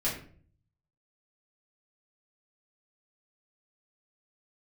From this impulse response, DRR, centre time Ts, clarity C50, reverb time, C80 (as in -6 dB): -8.0 dB, 32 ms, 6.5 dB, 0.50 s, 10.0 dB